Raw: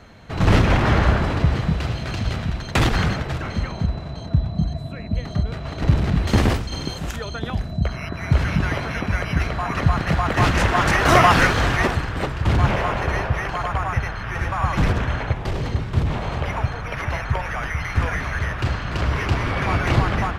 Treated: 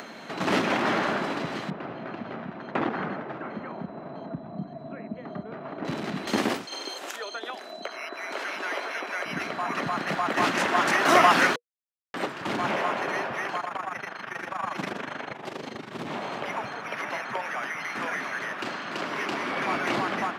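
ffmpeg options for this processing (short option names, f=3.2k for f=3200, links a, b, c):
-filter_complex "[0:a]asettb=1/sr,asplit=3[a][b][c];[a]atrim=end=1.704[d];[b]atrim=start=1.7:end=5.85,asetpts=PTS-STARTPTS,afade=t=in:d=0.004:c=qsin,afade=t=out:st=4.146:d=0.004:c=qsin,lowpass=1.4k[e];[c]atrim=start=5.846[f];[d][e]acrossfade=d=0.004:c1=hsin:c2=qsin[g];[g][f]acrossfade=d=0.004:c1=qsin:c2=hsin,asettb=1/sr,asplit=3[h][i][j];[h]atrim=end=6.654[k];[i]atrim=start=6.65:end=9.26,asetpts=PTS-STARTPTS,afade=t=in:d=0.004:c=qsin,afade=t=out:st=2.606:d=0.004:c=qsin,highpass=f=370:w=0.5412,highpass=f=370:w=1.3066[l];[j]atrim=start=9.256[m];[k][l]acrossfade=d=0.004:c1=hsin:c2=qsin[n];[n][m]acrossfade=d=0.004:c1=qsin:c2=hsin,asplit=3[o][p][q];[o]afade=t=out:st=13.58:d=0.02[r];[p]tremolo=f=25:d=0.788,afade=t=in:st=13.58:d=0.02,afade=t=out:st=15.99:d=0.02[s];[q]afade=t=in:st=15.99:d=0.02[t];[r][s][t]amix=inputs=3:normalize=0,asettb=1/sr,asplit=3[u][v][w];[u]atrim=end=16.974[x];[v]atrim=start=16.97:end=19.5,asetpts=PTS-STARTPTS,afade=t=in:d=0.004:c=qsin,afade=t=out:st=2.526:d=0.004:c=qsin,highpass=140[y];[w]atrim=start=19.496[z];[x][y]acrossfade=d=0.004:c1=hsin:c2=qsin[aa];[aa][z]acrossfade=d=0.004:c1=qsin:c2=hsin,asplit=3[ab][ac][ad];[ab]atrim=end=11.56,asetpts=PTS-STARTPTS,afade=t=out:st=11.556:d=0.004:c=hsin[ae];[ac]atrim=start=11.56:end=12.14,asetpts=PTS-STARTPTS,volume=0[af];[ad]atrim=start=12.14,asetpts=PTS-STARTPTS,afade=t=in:d=0.004:c=hsin[ag];[ae][af][ag]concat=n=3:v=0:a=1,highpass=f=220:w=0.5412,highpass=f=220:w=1.3066,bandreject=f=480:w=14,acompressor=mode=upward:threshold=-28dB:ratio=2.5,volume=-3.5dB"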